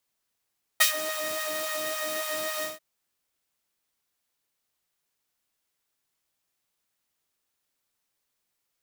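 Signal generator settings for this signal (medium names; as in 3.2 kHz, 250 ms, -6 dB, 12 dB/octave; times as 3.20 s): synth patch with filter wobble D#5, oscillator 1 saw, interval +19 st, oscillator 2 level -6.5 dB, sub -20 dB, noise -2.5 dB, filter highpass, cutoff 140 Hz, Q 1.1, filter envelope 3 oct, filter decay 0.28 s, filter sustain 45%, attack 13 ms, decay 0.11 s, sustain -15.5 dB, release 0.16 s, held 1.83 s, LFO 3.6 Hz, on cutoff 1.6 oct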